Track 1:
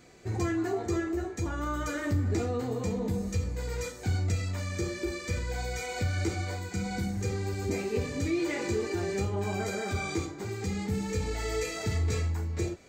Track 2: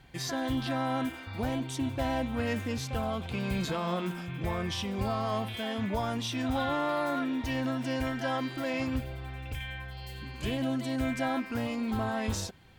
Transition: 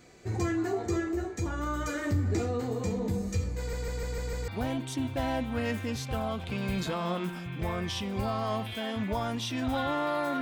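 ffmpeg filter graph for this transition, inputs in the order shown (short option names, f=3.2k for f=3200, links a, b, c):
-filter_complex "[0:a]apad=whole_dur=10.41,atrim=end=10.41,asplit=6[a][b][c][d][e][f];[a]atrim=end=3.732[g];[b]atrim=start=3.578:end=3.732[h];[c]atrim=start=3.578:end=3.732[i];[d]atrim=start=3.578:end=3.732[j];[e]atrim=start=3.578:end=3.732[k];[f]atrim=start=3.578:end=3.732[l];[1:a]atrim=start=1.298:end=7.23[m];[g][h]acrossfade=d=0.004:c1=hsin:c2=hsin[n];[n][i]acrossfade=d=0.004:c1=hsin:c2=hsin[o];[o][j]acrossfade=d=0.004:c1=hsin:c2=hsin[p];[p][k]acrossfade=d=0.004:c1=hsin:c2=hsin[q];[q][l]acrossfade=d=0.004:c1=hsin:c2=hsin[r];[r][m]acrossfade=d=0.004:c1=hsin:c2=hsin"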